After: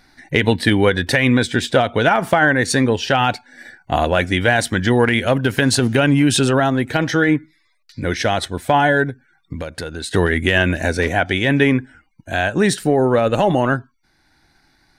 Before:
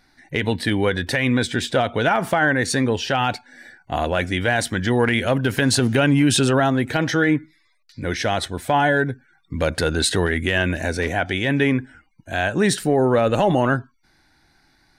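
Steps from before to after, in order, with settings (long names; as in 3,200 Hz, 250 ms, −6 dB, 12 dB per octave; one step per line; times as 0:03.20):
speech leveller within 3 dB 2 s
transient designer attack +2 dB, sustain −3 dB
0:09.09–0:10.14: downward compressor 10 to 1, threshold −28 dBFS, peak gain reduction 12.5 dB
level +3.5 dB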